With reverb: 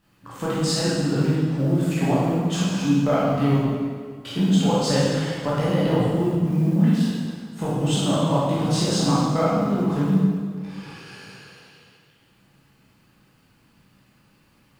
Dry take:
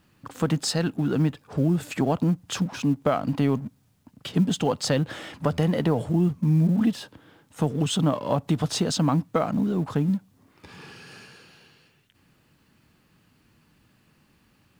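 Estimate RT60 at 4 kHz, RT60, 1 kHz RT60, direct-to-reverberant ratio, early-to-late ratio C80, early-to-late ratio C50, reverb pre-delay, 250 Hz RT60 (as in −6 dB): 1.6 s, 1.8 s, 1.8 s, −9.0 dB, 0.0 dB, −2.5 dB, 12 ms, 1.9 s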